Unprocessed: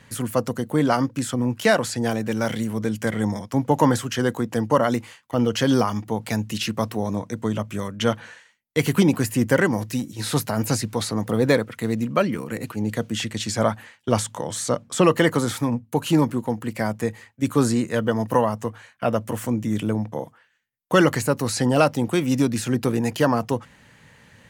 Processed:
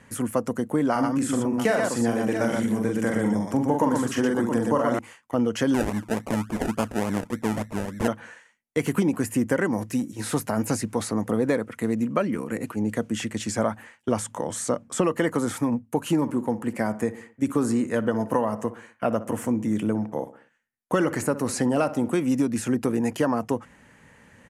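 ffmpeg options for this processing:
-filter_complex "[0:a]asettb=1/sr,asplit=3[a][b][c];[a]atrim=end=0.914[d];[b]atrim=start=0.91:end=4.99,asetpts=PTS-STARTPTS,afade=t=in:d=0.004:c=qsin,afade=t=out:st=4.076:d=0.004:c=qsin,aecho=1:1:43|119|671:0.596|0.631|0.178,atrim=end_sample=179928[e];[c]atrim=start=4.986[f];[d][e]acrossfade=d=0.004:c1=hsin:c2=qsin[g];[g][f]acrossfade=d=0.004:c1=qsin:c2=hsin,asettb=1/sr,asplit=3[h][i][j];[h]atrim=end=5.744[k];[i]atrim=start=5.74:end=8.08,asetpts=PTS-STARTPTS,afade=t=in:d=0.004:c=qsin,afade=t=out:st=2.336:d=0.004:c=qsin,acrusher=samples=32:mix=1:aa=0.000001:lfo=1:lforange=19.2:lforate=3.5[l];[j]atrim=start=8.076[m];[k][l]acrossfade=d=0.004:c1=hsin:c2=qsin[n];[n][m]acrossfade=d=0.004:c1=qsin:c2=hsin,asplit=3[o][p][q];[o]afade=t=out:st=16.2:d=0.02[r];[p]asplit=2[s][t];[t]adelay=61,lowpass=f=2.4k:p=1,volume=-15.5dB,asplit=2[u][v];[v]adelay=61,lowpass=f=2.4k:p=1,volume=0.49,asplit=2[w][x];[x]adelay=61,lowpass=f=2.4k:p=1,volume=0.49,asplit=2[y][z];[z]adelay=61,lowpass=f=2.4k:p=1,volume=0.49[aa];[s][u][w][y][aa]amix=inputs=5:normalize=0,afade=t=in:st=16.2:d=0.02,afade=t=out:st=22.12:d=0.02[ab];[q]afade=t=in:st=22.12:d=0.02[ac];[r][ab][ac]amix=inputs=3:normalize=0,equalizer=f=125:t=o:w=1:g=-6,equalizer=f=250:t=o:w=1:g=3,equalizer=f=4k:t=o:w=1:g=-10,acompressor=threshold=-19dB:ratio=4,lowpass=f=12k:w=0.5412,lowpass=f=12k:w=1.3066"

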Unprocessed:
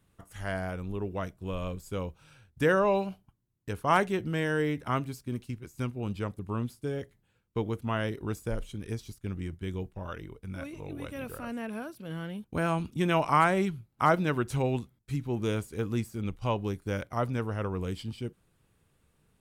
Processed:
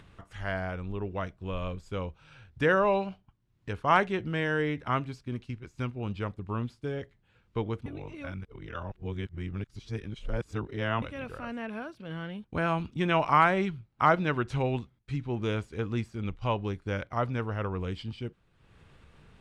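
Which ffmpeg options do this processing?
-filter_complex "[0:a]asplit=3[a][b][c];[a]atrim=end=7.862[d];[b]atrim=start=7.858:end=11.022,asetpts=PTS-STARTPTS,areverse[e];[c]atrim=start=11.018[f];[d][e]acrossfade=d=0.004:c1=hsin:c2=hsin[g];[g][f]acrossfade=d=0.004:c1=hsin:c2=hsin,lowpass=3.8k,equalizer=f=260:t=o:w=3:g=-4.5,acompressor=mode=upward:threshold=-46dB:ratio=2.5,volume=3dB"

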